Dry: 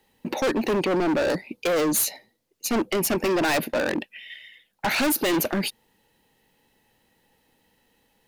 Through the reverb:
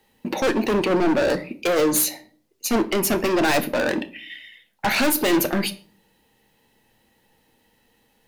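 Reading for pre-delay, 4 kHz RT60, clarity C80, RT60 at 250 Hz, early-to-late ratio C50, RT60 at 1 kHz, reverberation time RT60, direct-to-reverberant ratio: 9 ms, 0.30 s, 21.0 dB, 0.65 s, 17.0 dB, 0.40 s, 0.45 s, 8.0 dB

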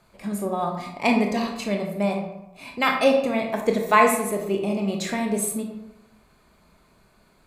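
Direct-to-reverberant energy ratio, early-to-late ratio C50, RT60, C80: 2.0 dB, 5.5 dB, 0.90 s, 8.0 dB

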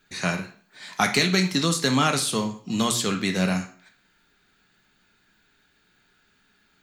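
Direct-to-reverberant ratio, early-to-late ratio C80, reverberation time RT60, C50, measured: 3.5 dB, 16.0 dB, 0.50 s, 10.0 dB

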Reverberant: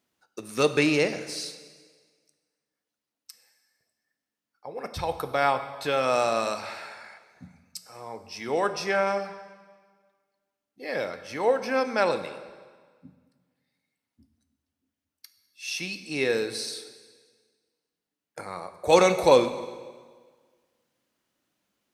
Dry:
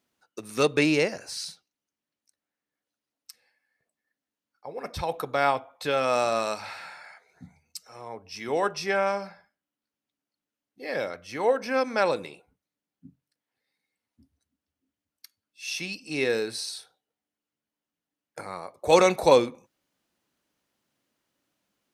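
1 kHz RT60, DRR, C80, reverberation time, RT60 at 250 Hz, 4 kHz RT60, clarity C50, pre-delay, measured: 1.6 s, 10.0 dB, 13.0 dB, 1.6 s, 1.6 s, 1.5 s, 11.5 dB, 5 ms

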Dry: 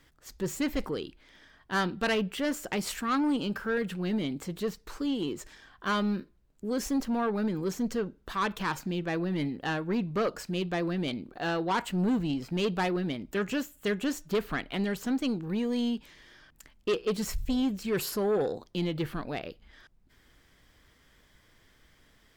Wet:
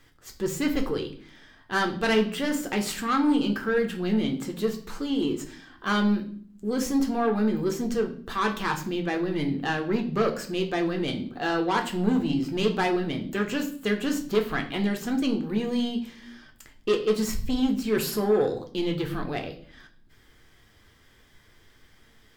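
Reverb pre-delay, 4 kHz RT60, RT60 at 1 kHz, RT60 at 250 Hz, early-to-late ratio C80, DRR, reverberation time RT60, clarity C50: 3 ms, 0.45 s, 0.45 s, 0.95 s, 15.5 dB, 3.5 dB, 0.50 s, 11.5 dB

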